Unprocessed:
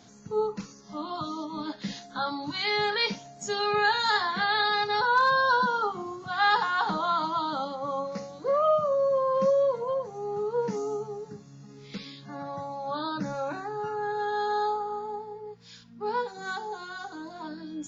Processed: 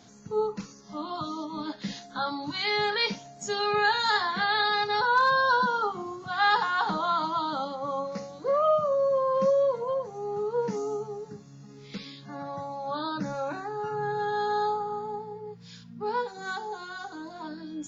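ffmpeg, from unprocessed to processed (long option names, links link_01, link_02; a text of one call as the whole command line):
ffmpeg -i in.wav -filter_complex "[0:a]asettb=1/sr,asplit=3[link_01][link_02][link_03];[link_01]atrim=end=13.914[link_04];[link_02]atrim=start=13.91:end=16.04,asetpts=PTS-STARTPTS,afade=type=in:duration=0.004:curve=qsin,afade=type=out:start_time=2.126:duration=0.004:curve=qsin,equalizer=frequency=150:width_type=o:width=0.64:gain=14.5[link_05];[link_03]atrim=start=16.036[link_06];[link_04][link_05]acrossfade=duration=0.004:curve1=hsin:curve2=qsin[link_07];[link_07][link_06]acrossfade=duration=0.004:curve1=qsin:curve2=hsin" out.wav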